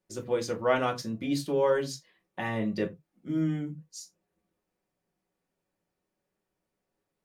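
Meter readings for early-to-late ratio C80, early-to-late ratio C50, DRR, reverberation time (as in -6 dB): 27.0 dB, 18.0 dB, 0.5 dB, no single decay rate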